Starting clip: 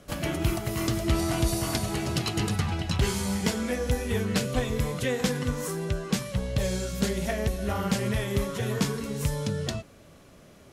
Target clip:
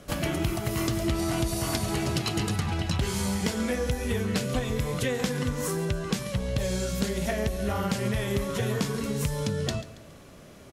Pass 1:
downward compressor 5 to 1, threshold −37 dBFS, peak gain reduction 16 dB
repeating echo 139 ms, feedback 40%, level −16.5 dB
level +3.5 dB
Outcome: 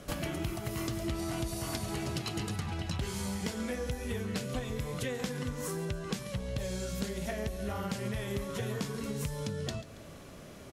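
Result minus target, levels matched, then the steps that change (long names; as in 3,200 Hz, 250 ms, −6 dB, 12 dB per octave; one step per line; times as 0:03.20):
downward compressor: peak gain reduction +7.5 dB
change: downward compressor 5 to 1, threshold −27.5 dBFS, peak gain reduction 8.5 dB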